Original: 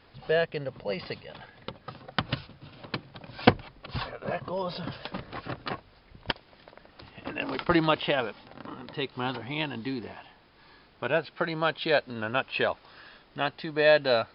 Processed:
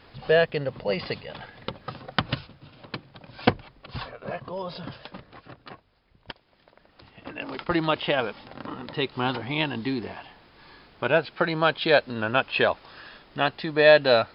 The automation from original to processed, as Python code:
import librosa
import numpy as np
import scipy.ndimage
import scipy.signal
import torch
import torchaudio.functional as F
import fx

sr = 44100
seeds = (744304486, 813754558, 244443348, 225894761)

y = fx.gain(x, sr, db=fx.line((2.01, 5.5), (2.73, -1.5), (4.91, -1.5), (5.42, -9.5), (6.3, -9.5), (7.08, -2.5), (7.64, -2.5), (8.41, 5.0)))